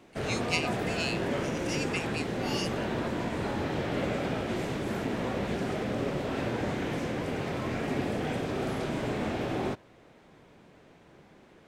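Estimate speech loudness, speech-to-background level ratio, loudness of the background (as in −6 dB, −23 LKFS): −35.5 LKFS, −3.5 dB, −32.0 LKFS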